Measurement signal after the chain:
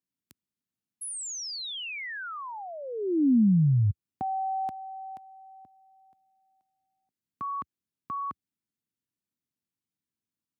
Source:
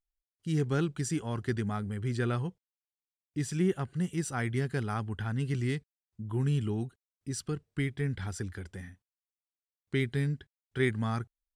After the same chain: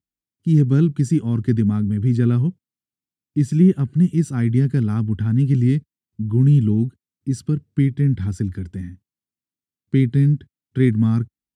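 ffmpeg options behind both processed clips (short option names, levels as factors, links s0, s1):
-af "highpass=f=79:w=0.5412,highpass=f=79:w=1.3066,lowshelf=f=390:t=q:w=1.5:g=13.5"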